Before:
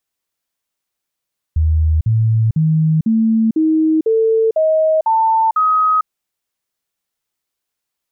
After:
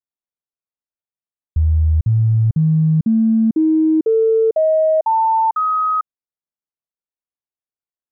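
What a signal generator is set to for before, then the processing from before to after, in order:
stepped sweep 78.9 Hz up, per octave 2, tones 9, 0.45 s, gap 0.05 s −10.5 dBFS
mu-law and A-law mismatch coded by A
low-pass filter 1,200 Hz 12 dB per octave

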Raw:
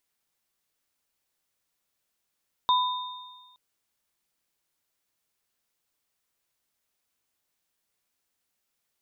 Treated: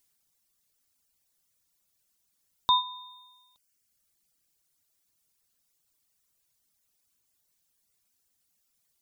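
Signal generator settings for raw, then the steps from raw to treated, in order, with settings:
inharmonic partials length 0.87 s, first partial 1,000 Hz, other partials 3,660 Hz, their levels −6.5 dB, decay 1.27 s, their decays 1.57 s, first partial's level −18 dB
bass and treble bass +8 dB, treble +9 dB
reverb reduction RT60 1.3 s

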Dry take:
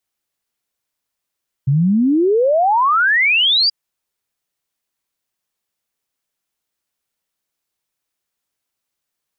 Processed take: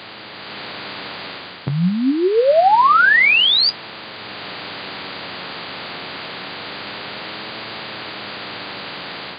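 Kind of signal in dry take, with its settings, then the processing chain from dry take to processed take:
exponential sine sweep 130 Hz → 4,900 Hz 2.03 s −11 dBFS
compressor on every frequency bin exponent 0.4
automatic gain control gain up to 6 dB
flanger 0.26 Hz, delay 9 ms, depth 2.4 ms, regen +54%

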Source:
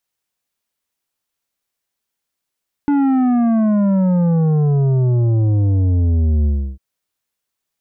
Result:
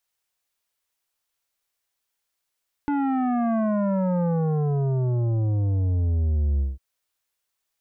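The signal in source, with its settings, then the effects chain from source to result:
bass drop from 290 Hz, over 3.90 s, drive 9 dB, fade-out 0.32 s, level −13 dB
parametric band 200 Hz −9.5 dB 1.7 octaves
brickwall limiter −18.5 dBFS

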